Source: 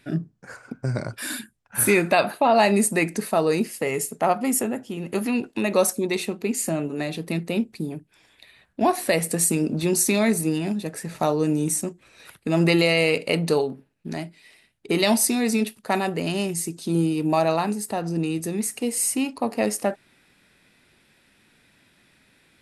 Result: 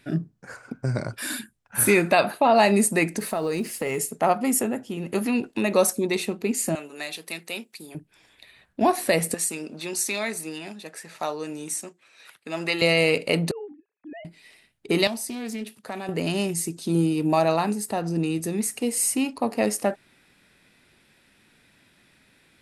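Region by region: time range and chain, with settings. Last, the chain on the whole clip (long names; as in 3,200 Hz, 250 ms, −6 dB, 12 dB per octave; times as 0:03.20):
0:03.18–0:03.98: mu-law and A-law mismatch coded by mu + downward compressor 5 to 1, threshold −22 dBFS
0:06.75–0:07.95: high-pass filter 1,100 Hz 6 dB per octave + spectral tilt +1.5 dB per octave
0:09.34–0:12.82: high-pass filter 1,200 Hz 6 dB per octave + high-shelf EQ 9,100 Hz −10 dB
0:13.51–0:14.25: three sine waves on the formant tracks + downward compressor 5 to 1, threshold −35 dBFS
0:15.07–0:16.09: high-pass filter 91 Hz 24 dB per octave + downward compressor 2 to 1, threshold −37 dBFS + highs frequency-modulated by the lows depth 0.17 ms
whole clip: no processing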